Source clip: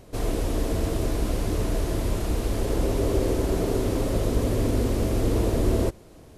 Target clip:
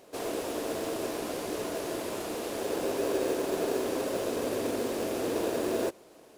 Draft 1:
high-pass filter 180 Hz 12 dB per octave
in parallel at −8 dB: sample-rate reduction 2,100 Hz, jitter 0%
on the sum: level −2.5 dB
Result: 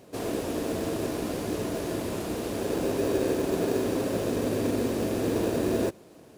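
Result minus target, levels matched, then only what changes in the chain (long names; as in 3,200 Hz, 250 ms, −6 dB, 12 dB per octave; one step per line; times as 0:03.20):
250 Hz band +3.0 dB
change: high-pass filter 400 Hz 12 dB per octave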